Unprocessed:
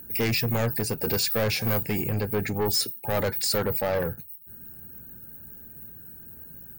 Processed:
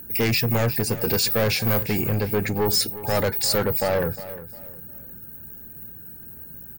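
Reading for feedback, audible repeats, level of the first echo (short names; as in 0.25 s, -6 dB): 30%, 2, -15.0 dB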